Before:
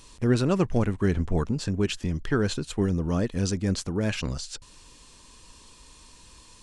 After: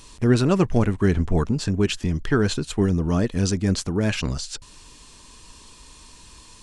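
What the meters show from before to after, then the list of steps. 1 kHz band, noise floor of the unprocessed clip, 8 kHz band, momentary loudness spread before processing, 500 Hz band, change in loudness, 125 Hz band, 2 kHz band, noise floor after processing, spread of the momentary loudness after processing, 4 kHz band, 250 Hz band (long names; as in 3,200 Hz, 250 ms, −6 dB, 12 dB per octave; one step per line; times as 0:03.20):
+4.5 dB, −52 dBFS, +4.5 dB, 7 LU, +4.0 dB, +4.5 dB, +4.5 dB, +4.5 dB, −48 dBFS, 7 LU, +4.5 dB, +4.5 dB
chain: notch filter 520 Hz, Q 12
level +4.5 dB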